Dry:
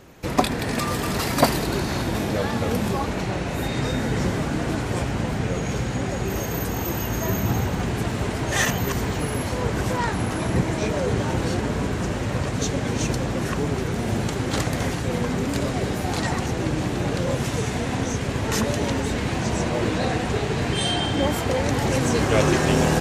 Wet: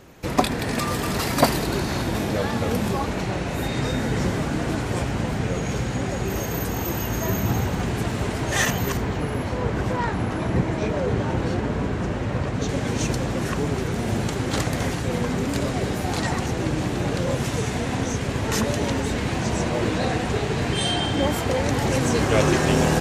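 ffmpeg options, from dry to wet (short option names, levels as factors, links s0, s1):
-filter_complex "[0:a]asettb=1/sr,asplit=3[s0][s1][s2];[s0]atrim=end=8.974[s3];[s1]atrim=start=8.97:end=12.69,asetpts=PTS-STARTPTS,afade=t=in:d=0.004:c=qsin,afade=t=out:st=3.716:d=0.004:c=qsin,lowpass=f=2600:p=1[s4];[s2]atrim=start=12.686[s5];[s3][s4]acrossfade=d=0.004:c1=hsin:c2=qsin[s6];[s6][s5]acrossfade=d=0.004:c1=qsin:c2=hsin"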